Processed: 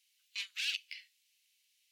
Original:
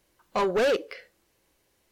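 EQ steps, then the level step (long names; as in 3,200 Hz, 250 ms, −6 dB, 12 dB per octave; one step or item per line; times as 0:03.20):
Butterworth high-pass 2,500 Hz 36 dB per octave
high-shelf EQ 5,100 Hz −9.5 dB
+4.5 dB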